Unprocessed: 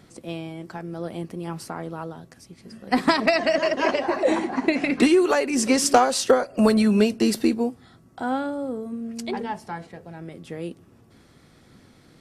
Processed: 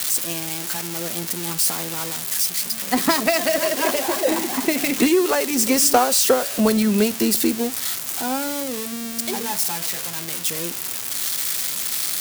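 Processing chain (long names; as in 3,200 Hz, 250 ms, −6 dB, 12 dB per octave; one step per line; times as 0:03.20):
spike at every zero crossing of −13 dBFS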